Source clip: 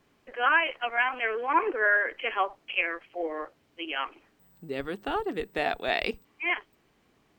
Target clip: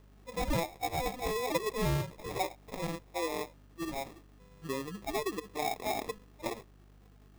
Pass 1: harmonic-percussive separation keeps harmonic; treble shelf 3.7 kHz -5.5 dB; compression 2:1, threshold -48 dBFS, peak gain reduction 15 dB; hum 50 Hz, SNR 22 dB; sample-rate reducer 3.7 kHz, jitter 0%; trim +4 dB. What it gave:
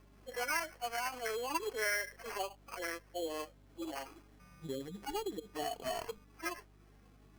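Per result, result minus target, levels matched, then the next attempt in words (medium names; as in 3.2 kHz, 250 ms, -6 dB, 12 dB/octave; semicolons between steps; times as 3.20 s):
sample-rate reducer: distortion -11 dB; compression: peak gain reduction +4.5 dB
harmonic-percussive separation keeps harmonic; treble shelf 3.7 kHz -5.5 dB; compression 2:1, threshold -48 dBFS, peak gain reduction 15 dB; hum 50 Hz, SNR 22 dB; sample-rate reducer 1.5 kHz, jitter 0%; trim +4 dB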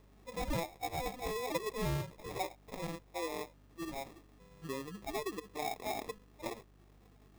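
compression: peak gain reduction +4.5 dB
harmonic-percussive separation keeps harmonic; treble shelf 3.7 kHz -5.5 dB; compression 2:1, threshold -39 dBFS, peak gain reduction 10.5 dB; hum 50 Hz, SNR 22 dB; sample-rate reducer 1.5 kHz, jitter 0%; trim +4 dB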